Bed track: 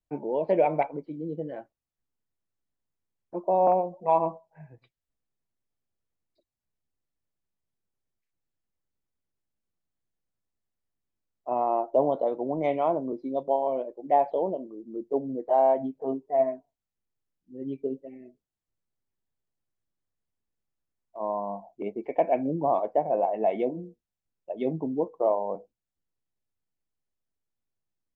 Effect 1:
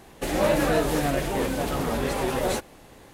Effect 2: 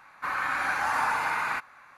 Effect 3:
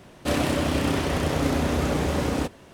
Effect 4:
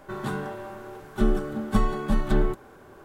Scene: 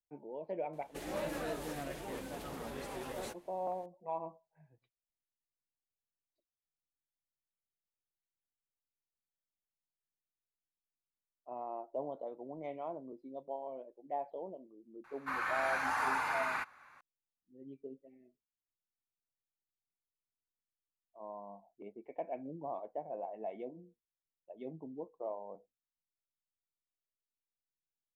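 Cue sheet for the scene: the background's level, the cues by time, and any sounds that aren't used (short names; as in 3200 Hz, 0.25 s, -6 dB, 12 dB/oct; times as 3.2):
bed track -16.5 dB
0.73 add 1 -16 dB + low shelf 130 Hz -6.5 dB
15.04 add 2 -7 dB
not used: 3, 4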